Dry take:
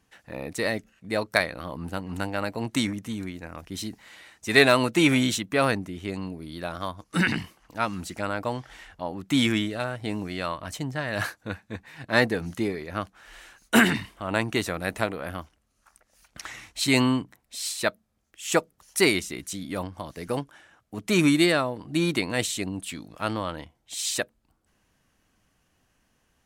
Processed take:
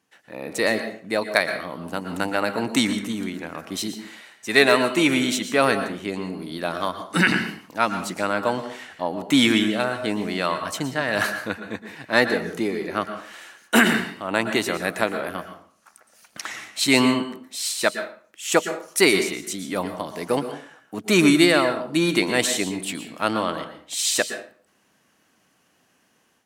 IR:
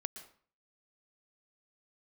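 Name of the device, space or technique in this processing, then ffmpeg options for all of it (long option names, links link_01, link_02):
far laptop microphone: -filter_complex "[1:a]atrim=start_sample=2205[link_01];[0:a][link_01]afir=irnorm=-1:irlink=0,highpass=200,dynaudnorm=framelen=310:gausssize=3:maxgain=8.5dB"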